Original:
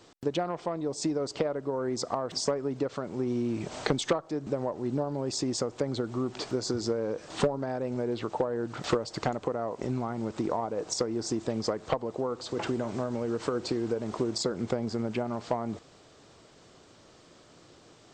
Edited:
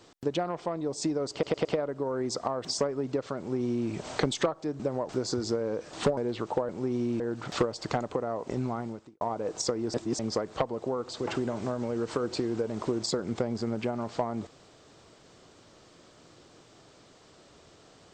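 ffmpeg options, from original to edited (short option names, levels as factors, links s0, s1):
-filter_complex "[0:a]asplit=11[s0][s1][s2][s3][s4][s5][s6][s7][s8][s9][s10];[s0]atrim=end=1.432[s11];[s1]atrim=start=1.318:end=1.432[s12];[s2]atrim=start=1.318:end=1.432[s13];[s3]atrim=start=1.318:end=4.762[s14];[s4]atrim=start=6.458:end=7.542[s15];[s5]atrim=start=7.998:end=8.522[s16];[s6]atrim=start=3.048:end=3.562[s17];[s7]atrim=start=8.518:end=10.53,asetpts=PTS-STARTPTS,afade=t=out:st=1.612:d=0.4:c=qua[s18];[s8]atrim=start=10.53:end=11.262,asetpts=PTS-STARTPTS,afade=t=in:d=0.004:c=hsin[s19];[s9]atrim=start=11.258:end=11.512,asetpts=PTS-STARTPTS,areverse[s20];[s10]atrim=start=11.508[s21];[s11][s12]acrossfade=d=0.004:c1=hsin:c2=hsin[s22];[s22][s13]acrossfade=d=0.004:c1=hsin:c2=hsin[s23];[s23][s14]acrossfade=d=0.004:c1=hsin:c2=hsin[s24];[s24][s15]acrossfade=d=0.004:c1=hsin:c2=hsin[s25];[s25][s16]acrossfade=d=0.004:c1=hsin:c2=hsin[s26];[s26][s17]acrossfade=d=0.004:c1=hsin:c2=hsin[s27];[s18][s19]concat=n=2:v=0:a=1[s28];[s27][s28]acrossfade=d=0.004:c1=hsin:c2=hsin[s29];[s29][s20]acrossfade=d=0.004:c1=hsin:c2=hsin[s30];[s30][s21]acrossfade=d=0.004:c1=hsin:c2=hsin"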